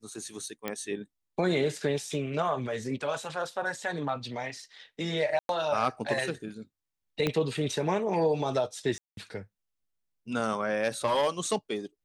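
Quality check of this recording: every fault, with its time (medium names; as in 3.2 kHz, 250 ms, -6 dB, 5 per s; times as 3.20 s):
0.68 s: pop -17 dBFS
5.39–5.49 s: dropout 102 ms
7.27 s: pop -13 dBFS
8.98–9.17 s: dropout 192 ms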